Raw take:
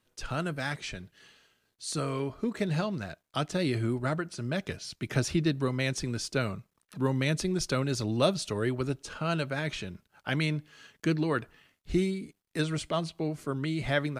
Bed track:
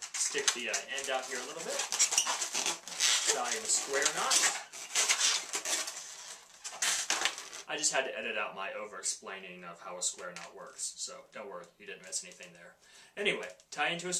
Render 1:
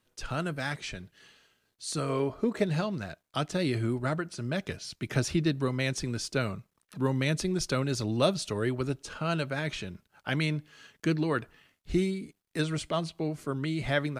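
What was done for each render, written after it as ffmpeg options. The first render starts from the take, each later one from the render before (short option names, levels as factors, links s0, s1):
-filter_complex "[0:a]asettb=1/sr,asplit=3[s0][s1][s2];[s0]atrim=end=2.094[s3];[s1]atrim=start=2.09:end=2.64,asetpts=PTS-STARTPTS,afade=t=in:d=0.004:c=qsin,afade=t=out:st=0.546:d=0.004:c=qsin,equalizer=f=580:w=0.72:g=6[s4];[s2]atrim=start=2.636[s5];[s3][s4]acrossfade=d=0.004:c1=hsin:c2=qsin[s6];[s6][s5]acrossfade=d=0.004:c1=qsin:c2=hsin"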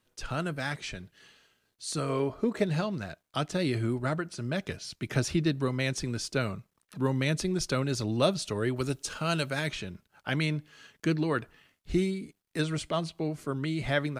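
-filter_complex "[0:a]asettb=1/sr,asplit=3[s0][s1][s2];[s0]atrim=end=8.764[s3];[s1]atrim=start=8.76:end=9.69,asetpts=PTS-STARTPTS,afade=t=in:d=0.004:c=qsin,afade=t=out:st=0.926:d=0.004:c=qsin,highshelf=f=4100:g=11.5[s4];[s2]atrim=start=9.686[s5];[s3][s4]acrossfade=d=0.004:c1=hsin:c2=qsin[s6];[s6][s5]acrossfade=d=0.004:c1=qsin:c2=hsin"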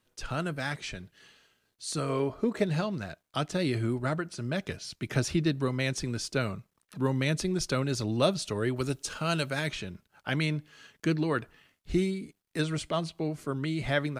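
-af anull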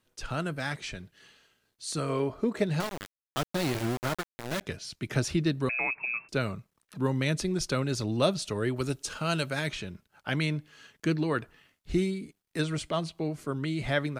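-filter_complex "[0:a]asettb=1/sr,asplit=3[s0][s1][s2];[s0]atrim=end=2.804[s3];[s1]atrim=start=2.8:end=4.61,asetpts=PTS-STARTPTS,afade=t=in:d=0.004:c=qsin,afade=t=out:st=1.806:d=0.004:c=qsin,aeval=exprs='val(0)*gte(abs(val(0)),0.0376)':c=same[s4];[s2]atrim=start=4.606[s5];[s3][s4]acrossfade=d=0.004:c1=hsin:c2=qsin[s6];[s6][s5]acrossfade=d=0.004:c1=qsin:c2=hsin,asettb=1/sr,asplit=3[s7][s8][s9];[s7]atrim=end=5.694[s10];[s8]atrim=start=5.69:end=6.29,asetpts=PTS-STARTPTS,afade=t=in:d=0.004:c=qsin,afade=t=out:st=0.596:d=0.004:c=qsin,lowpass=f=2300:t=q:w=0.5098,lowpass=f=2300:t=q:w=0.6013,lowpass=f=2300:t=q:w=0.9,lowpass=f=2300:t=q:w=2.563,afreqshift=-2700[s11];[s9]atrim=start=6.286[s12];[s10][s11]acrossfade=d=0.004:c1=hsin:c2=qsin[s13];[s13][s12]acrossfade=d=0.004:c1=qsin:c2=hsin"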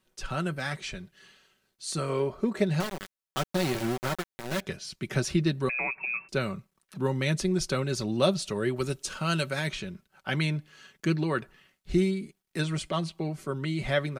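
-af "aecho=1:1:5.3:0.47"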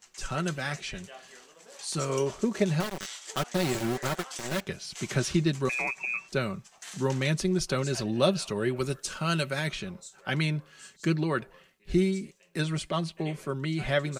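-filter_complex "[1:a]volume=0.211[s0];[0:a][s0]amix=inputs=2:normalize=0"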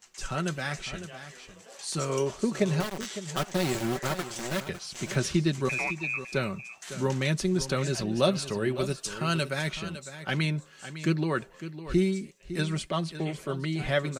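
-af "aecho=1:1:556:0.237"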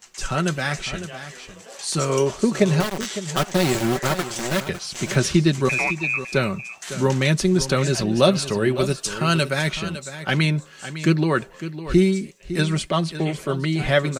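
-af "volume=2.51,alimiter=limit=0.708:level=0:latency=1"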